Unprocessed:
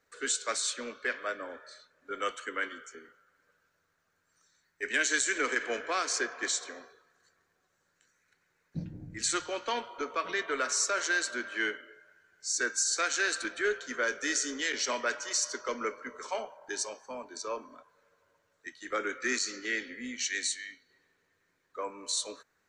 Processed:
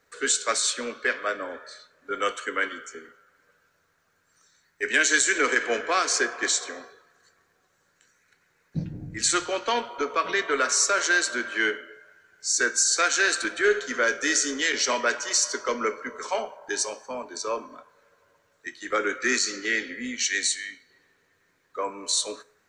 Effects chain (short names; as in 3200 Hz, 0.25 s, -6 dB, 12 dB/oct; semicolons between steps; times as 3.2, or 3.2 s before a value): 13.51–14.03 flutter echo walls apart 11.7 m, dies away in 0.36 s; on a send at -14 dB: reverb RT60 0.55 s, pre-delay 3 ms; on the sum: gain +7 dB